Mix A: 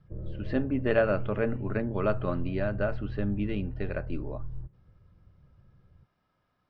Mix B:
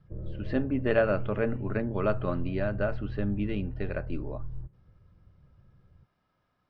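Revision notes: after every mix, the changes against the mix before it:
nothing changed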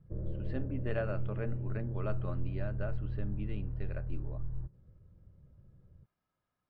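speech −11.5 dB

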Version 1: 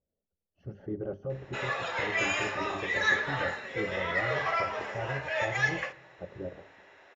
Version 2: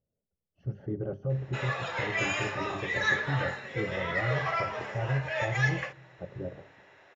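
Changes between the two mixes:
background: send −10.5 dB
master: add parametric band 130 Hz +10 dB 0.63 octaves

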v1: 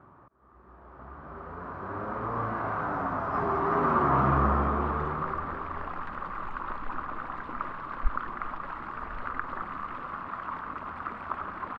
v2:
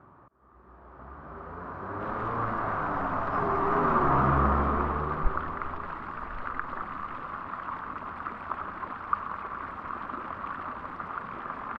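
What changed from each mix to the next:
second sound: entry −2.80 s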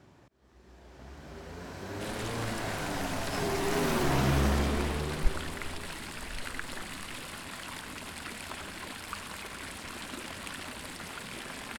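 master: remove low-pass with resonance 1,200 Hz, resonance Q 6.1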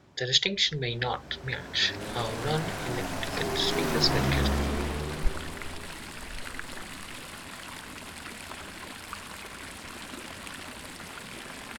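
speech: unmuted

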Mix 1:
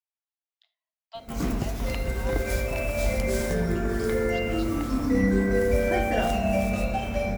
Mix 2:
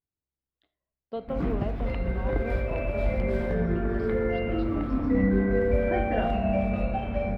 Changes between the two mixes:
speech: remove Chebyshev high-pass with heavy ripple 640 Hz, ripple 6 dB
master: add high-frequency loss of the air 460 metres

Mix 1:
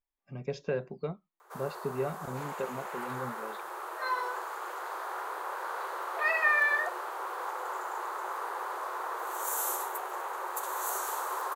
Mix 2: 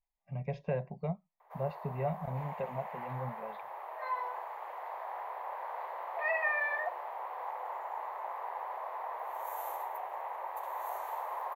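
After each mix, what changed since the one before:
speech +4.0 dB
master: add drawn EQ curve 180 Hz 0 dB, 330 Hz −21 dB, 650 Hz +2 dB, 990 Hz −2 dB, 1,400 Hz −17 dB, 2,000 Hz −2 dB, 4,700 Hz −20 dB, 8,600 Hz −28 dB, 13,000 Hz −13 dB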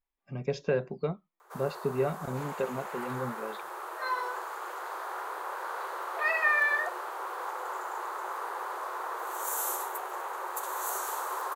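master: remove drawn EQ curve 180 Hz 0 dB, 330 Hz −21 dB, 650 Hz +2 dB, 990 Hz −2 dB, 1,400 Hz −17 dB, 2,000 Hz −2 dB, 4,700 Hz −20 dB, 8,600 Hz −28 dB, 13,000 Hz −13 dB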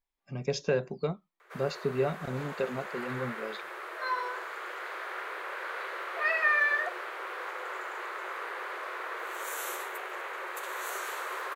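speech: add parametric band 6,300 Hz +10.5 dB 1.5 octaves
first sound: add drawn EQ curve 600 Hz 0 dB, 860 Hz −9 dB, 2,200 Hz +11 dB, 6,500 Hz −5 dB, 13,000 Hz −9 dB

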